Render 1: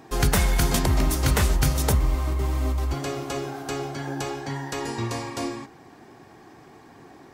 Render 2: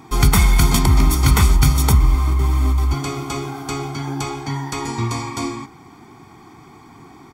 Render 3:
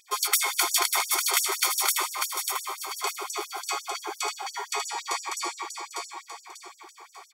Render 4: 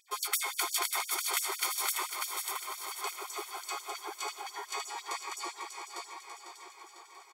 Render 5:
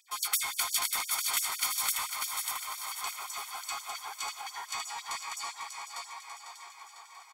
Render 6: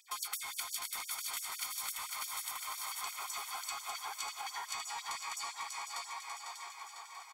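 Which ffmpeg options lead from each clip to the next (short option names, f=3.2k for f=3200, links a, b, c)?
-af "aecho=1:1:0.9:0.76,volume=3.5dB"
-af "aecho=1:1:593|1186|1779|2372|2965:0.562|0.225|0.09|0.036|0.0144,afftfilt=real='re*gte(b*sr/1024,340*pow(5500/340,0.5+0.5*sin(2*PI*5.8*pts/sr)))':imag='im*gte(b*sr/1024,340*pow(5500/340,0.5+0.5*sin(2*PI*5.8*pts/sr)))':win_size=1024:overlap=0.75,volume=-1dB"
-filter_complex "[0:a]equalizer=f=5.8k:t=o:w=0.51:g=-3,asplit=2[a][b];[b]aecho=0:1:499|998|1497|1996|2495|2994|3493:0.316|0.19|0.114|0.0683|0.041|0.0246|0.0148[c];[a][c]amix=inputs=2:normalize=0,volume=-7.5dB"
-filter_complex "[0:a]highpass=f=700:w=0.5412,highpass=f=700:w=1.3066,acrossover=split=2900[a][b];[a]asoftclip=type=tanh:threshold=-34.5dB[c];[c][b]amix=inputs=2:normalize=0,volume=2.5dB"
-af "acompressor=threshold=-39dB:ratio=6,volume=1.5dB"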